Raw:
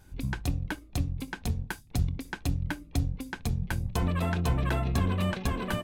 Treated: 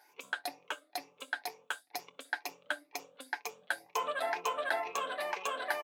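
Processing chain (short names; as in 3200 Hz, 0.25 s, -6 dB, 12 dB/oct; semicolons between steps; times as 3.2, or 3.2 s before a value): moving spectral ripple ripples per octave 0.77, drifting +2.1 Hz, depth 12 dB; HPF 530 Hz 24 dB/oct; high shelf 3900 Hz -6 dB; comb 6.9 ms, depth 35%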